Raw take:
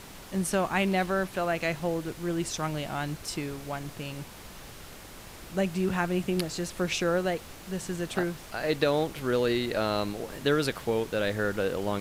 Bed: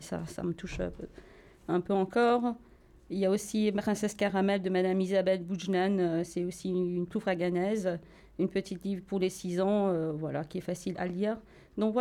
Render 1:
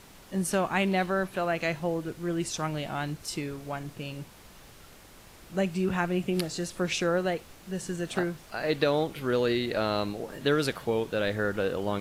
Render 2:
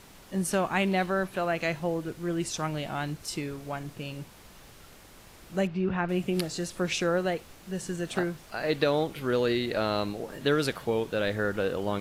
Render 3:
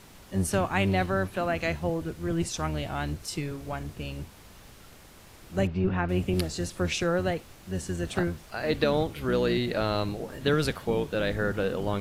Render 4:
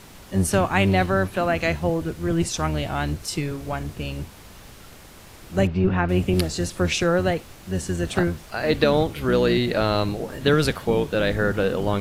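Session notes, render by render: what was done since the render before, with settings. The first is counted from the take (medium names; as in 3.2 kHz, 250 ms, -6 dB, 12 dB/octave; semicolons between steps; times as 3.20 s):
noise print and reduce 6 dB
5.67–6.09 s: distance through air 260 m
octave divider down 1 oct, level -1 dB
trim +6 dB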